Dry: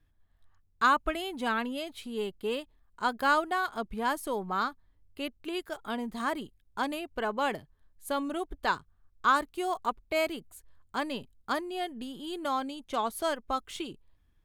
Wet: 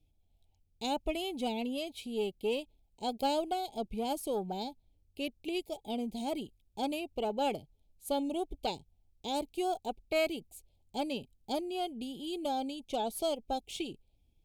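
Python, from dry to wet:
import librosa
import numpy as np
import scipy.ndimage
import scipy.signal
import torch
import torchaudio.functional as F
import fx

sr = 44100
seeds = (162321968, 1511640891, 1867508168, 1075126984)

y = scipy.signal.sosfilt(scipy.signal.cheby1(4, 1.0, [840.0, 2300.0], 'bandstop', fs=sr, output='sos'), x)
y = fx.cheby_harmonics(y, sr, harmonics=(2,), levels_db=(-15,), full_scale_db=-19.0)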